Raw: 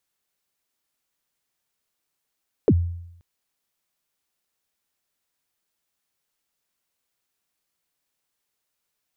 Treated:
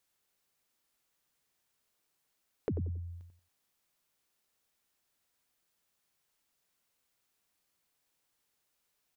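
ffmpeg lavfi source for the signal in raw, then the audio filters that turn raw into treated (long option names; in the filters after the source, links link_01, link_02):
-f lavfi -i "aevalsrc='0.299*pow(10,-3*t/0.79)*sin(2*PI*(520*0.053/log(86/520)*(exp(log(86/520)*min(t,0.053)/0.053)-1)+86*max(t-0.053,0)))':duration=0.53:sample_rate=44100"
-filter_complex "[0:a]alimiter=limit=-18dB:level=0:latency=1:release=471,asplit=2[link_01][link_02];[link_02]adelay=91,lowpass=frequency=1300:poles=1,volume=-5dB,asplit=2[link_03][link_04];[link_04]adelay=91,lowpass=frequency=1300:poles=1,volume=0.25,asplit=2[link_05][link_06];[link_06]adelay=91,lowpass=frequency=1300:poles=1,volume=0.25[link_07];[link_01][link_03][link_05][link_07]amix=inputs=4:normalize=0,acompressor=threshold=-37dB:ratio=2.5"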